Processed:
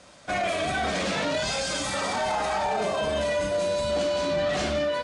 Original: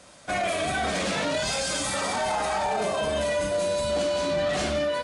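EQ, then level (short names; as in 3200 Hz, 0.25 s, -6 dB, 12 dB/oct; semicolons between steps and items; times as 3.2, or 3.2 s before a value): LPF 7400 Hz 12 dB/oct; 0.0 dB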